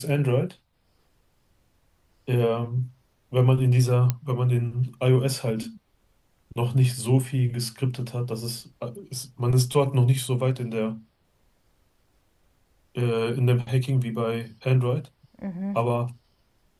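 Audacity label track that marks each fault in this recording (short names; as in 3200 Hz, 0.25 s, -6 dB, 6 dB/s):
4.100000	4.100000	pop -10 dBFS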